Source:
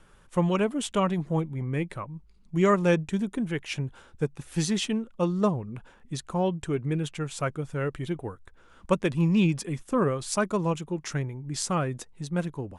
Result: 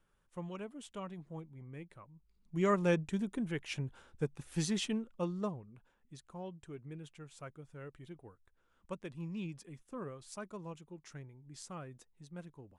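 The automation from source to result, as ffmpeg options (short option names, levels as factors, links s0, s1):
-af "volume=0.422,afade=t=in:st=2.16:d=0.61:silence=0.266073,afade=t=out:st=4.95:d=0.77:silence=0.266073"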